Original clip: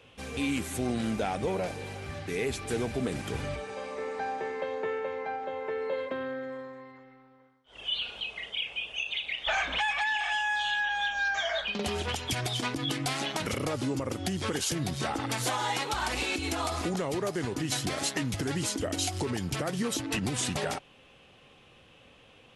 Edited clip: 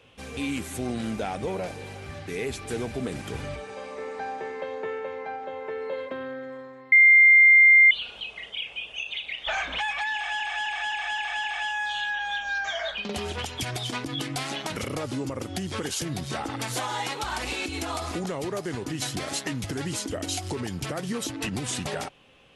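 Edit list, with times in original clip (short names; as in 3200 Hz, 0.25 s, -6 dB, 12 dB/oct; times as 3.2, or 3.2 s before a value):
6.92–7.91 bleep 2100 Hz -11 dBFS
10.14–10.4 loop, 6 plays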